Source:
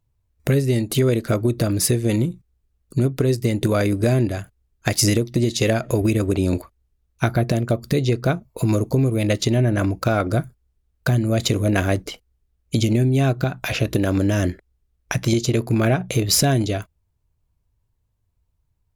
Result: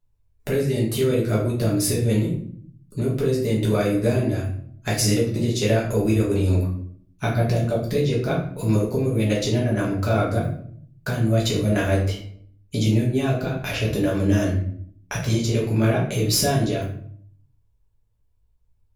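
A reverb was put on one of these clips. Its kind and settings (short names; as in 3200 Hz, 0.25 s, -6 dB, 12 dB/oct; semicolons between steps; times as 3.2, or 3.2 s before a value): shoebox room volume 76 m³, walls mixed, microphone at 1.4 m; gain -8.5 dB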